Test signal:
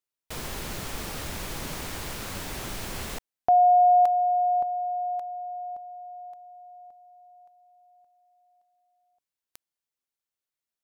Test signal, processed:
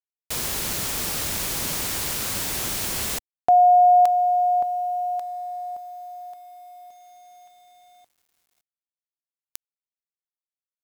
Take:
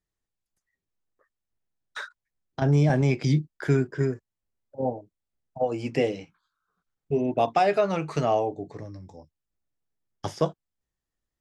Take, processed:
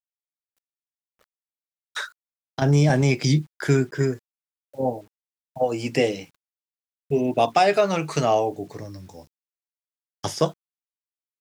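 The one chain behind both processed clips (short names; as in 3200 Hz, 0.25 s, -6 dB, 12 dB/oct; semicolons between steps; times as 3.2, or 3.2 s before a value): HPF 53 Hz 6 dB/oct; high shelf 3700 Hz +11 dB; bit-crush 10-bit; gain +3 dB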